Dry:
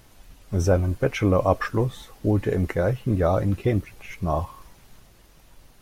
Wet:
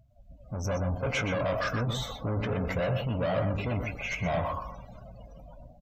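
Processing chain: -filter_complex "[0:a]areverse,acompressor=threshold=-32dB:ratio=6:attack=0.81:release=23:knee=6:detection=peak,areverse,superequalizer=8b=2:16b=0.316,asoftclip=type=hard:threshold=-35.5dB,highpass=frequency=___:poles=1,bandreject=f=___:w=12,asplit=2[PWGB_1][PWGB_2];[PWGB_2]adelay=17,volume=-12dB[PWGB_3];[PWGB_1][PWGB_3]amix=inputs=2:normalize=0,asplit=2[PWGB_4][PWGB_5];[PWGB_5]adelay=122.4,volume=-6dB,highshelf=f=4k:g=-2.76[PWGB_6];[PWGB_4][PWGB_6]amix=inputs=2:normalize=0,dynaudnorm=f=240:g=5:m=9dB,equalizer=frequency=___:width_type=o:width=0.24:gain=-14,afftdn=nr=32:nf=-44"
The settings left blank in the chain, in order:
58, 1.8k, 360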